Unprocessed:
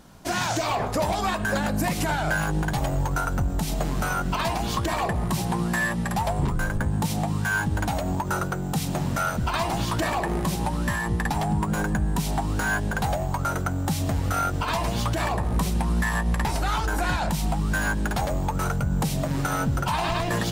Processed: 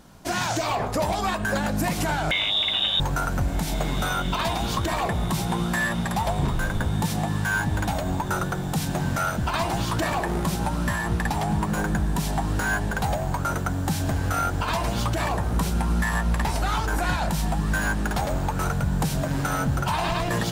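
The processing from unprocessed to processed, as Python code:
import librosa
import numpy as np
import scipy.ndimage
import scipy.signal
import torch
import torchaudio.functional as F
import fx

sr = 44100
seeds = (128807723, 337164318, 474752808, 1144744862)

y = fx.freq_invert(x, sr, carrier_hz=3700, at=(2.31, 3.0))
y = fx.echo_diffused(y, sr, ms=1580, feedback_pct=58, wet_db=-13)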